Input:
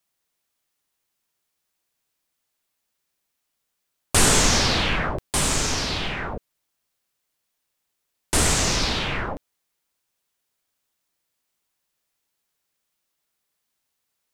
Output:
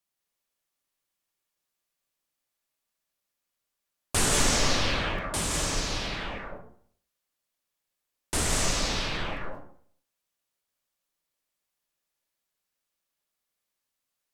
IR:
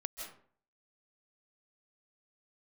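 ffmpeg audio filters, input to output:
-filter_complex "[0:a]asettb=1/sr,asplit=3[link_01][link_02][link_03];[link_01]atrim=end=4.614[link_04];[link_02]atrim=start=4.61:end=6.1,asetpts=PTS-STARTPTS,afade=type=in:duration=0.004:curve=qsin,afade=type=out:start_time=1.486:duration=0.004:curve=qsin,afreqshift=22[link_05];[link_03]atrim=start=6.096[link_06];[link_04][link_05]acrossfade=duration=0.004:curve1=hsin:curve2=qsin[link_07];[link_07][link_06]acrossfade=duration=0.004:curve1=qsin:curve2=hsin[link_08];[1:a]atrim=start_sample=2205,asetrate=39690,aresample=44100[link_09];[link_08][link_09]afir=irnorm=-1:irlink=0,volume=-5.5dB"

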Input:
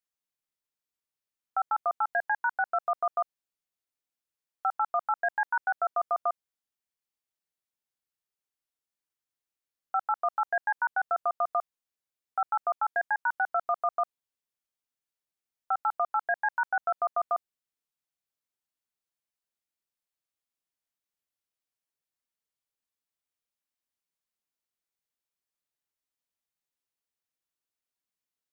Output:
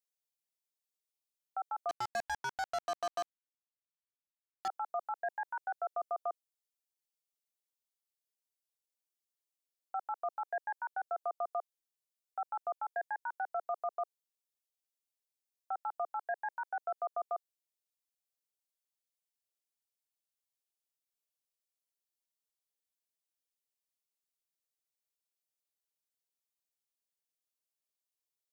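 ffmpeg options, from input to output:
ffmpeg -i in.wav -filter_complex "[0:a]highpass=frequency=420:width=0.5412,highpass=frequency=420:width=1.3066,equalizer=frequency=1400:width=0.81:gain=-14,asettb=1/sr,asplit=3[link_01][link_02][link_03];[link_01]atrim=end=1.894[link_04];[link_02]atrim=start=1.89:end=4.68,asetpts=PTS-STARTPTS,afade=type=in:duration=0.004:curve=qsin,afade=type=out:start_time=2.786:duration=0.004:curve=qsin,acrusher=bits=5:mix=0:aa=0.5[link_05];[link_03]atrim=start=4.676[link_06];[link_04][link_05]acrossfade=duration=0.004:curve1=hsin:curve2=qsin[link_07];[link_07][link_06]acrossfade=duration=0.004:curve1=qsin:curve2=hsin" out.wav

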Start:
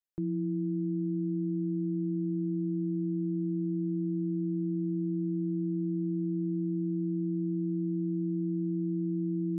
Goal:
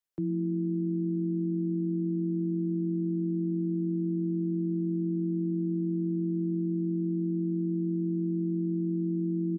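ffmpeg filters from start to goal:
ffmpeg -i in.wav -filter_complex "[0:a]acrossover=split=120|260[link_01][link_02][link_03];[link_01]alimiter=level_in=25dB:limit=-24dB:level=0:latency=1:release=14,volume=-25dB[link_04];[link_02]asplit=4[link_05][link_06][link_07][link_08];[link_06]adelay=106,afreqshift=46,volume=-13.5dB[link_09];[link_07]adelay=212,afreqshift=92,volume=-22.9dB[link_10];[link_08]adelay=318,afreqshift=138,volume=-32.2dB[link_11];[link_05][link_09][link_10][link_11]amix=inputs=4:normalize=0[link_12];[link_04][link_12][link_03]amix=inputs=3:normalize=0,volume=2dB" out.wav

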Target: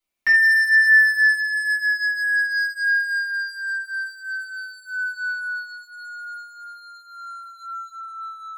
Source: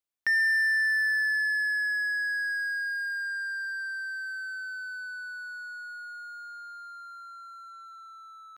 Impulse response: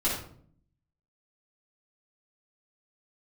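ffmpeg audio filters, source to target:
-filter_complex "[0:a]asetnsamples=nb_out_samples=441:pad=0,asendcmd='5.29 equalizer g -4.5',equalizer=frequency=2400:width_type=o:width=0.24:gain=10[link_01];[1:a]atrim=start_sample=2205,atrim=end_sample=4410[link_02];[link_01][link_02]afir=irnorm=-1:irlink=0"

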